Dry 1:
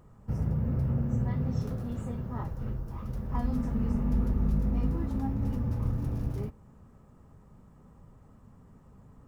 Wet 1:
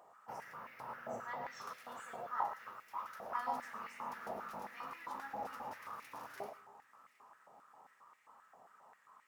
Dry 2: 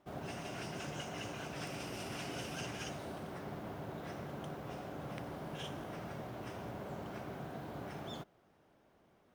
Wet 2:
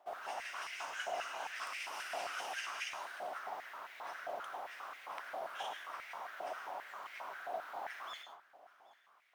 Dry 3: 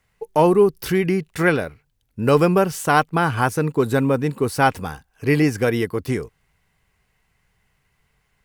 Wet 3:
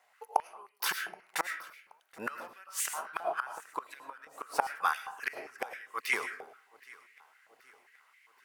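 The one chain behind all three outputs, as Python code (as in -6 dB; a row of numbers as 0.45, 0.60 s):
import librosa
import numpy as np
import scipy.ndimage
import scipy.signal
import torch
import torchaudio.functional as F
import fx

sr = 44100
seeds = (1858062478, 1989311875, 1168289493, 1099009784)

y = fx.wow_flutter(x, sr, seeds[0], rate_hz=2.1, depth_cents=35.0)
y = fx.gate_flip(y, sr, shuts_db=-12.0, range_db=-29)
y = fx.echo_feedback(y, sr, ms=776, feedback_pct=55, wet_db=-22.5)
y = fx.rev_freeverb(y, sr, rt60_s=0.51, hf_ratio=0.5, predelay_ms=65, drr_db=7.0)
y = fx.filter_held_highpass(y, sr, hz=7.5, low_hz=710.0, high_hz=2100.0)
y = y * 10.0 ** (-1.5 / 20.0)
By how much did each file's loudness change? -13.0, +1.0, -16.0 LU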